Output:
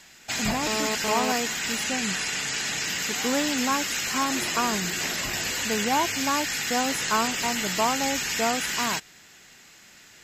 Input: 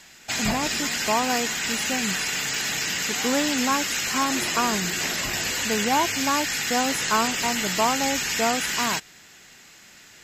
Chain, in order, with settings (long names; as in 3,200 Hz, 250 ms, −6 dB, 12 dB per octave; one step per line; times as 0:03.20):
0:00.67–0:01.32: phone interference −27 dBFS
0:01.84–0:02.84: low-pass filter 11,000 Hz 24 dB per octave
level −2 dB